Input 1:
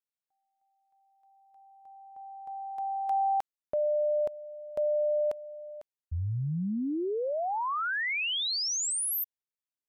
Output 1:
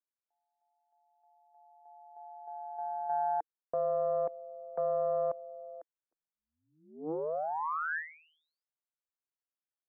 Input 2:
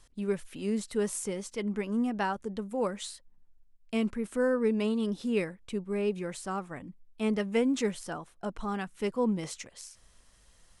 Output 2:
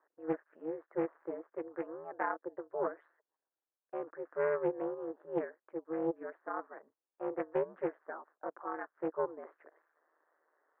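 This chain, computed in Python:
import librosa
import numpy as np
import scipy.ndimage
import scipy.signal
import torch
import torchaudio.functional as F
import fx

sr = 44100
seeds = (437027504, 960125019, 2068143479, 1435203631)

y = scipy.signal.sosfilt(scipy.signal.ellip(4, 1.0, 80, [390.0, 1700.0], 'bandpass', fs=sr, output='sos'), x)
y = y * np.sin(2.0 * np.pi * 79.0 * np.arange(len(y)) / sr)
y = fx.doppler_dist(y, sr, depth_ms=0.22)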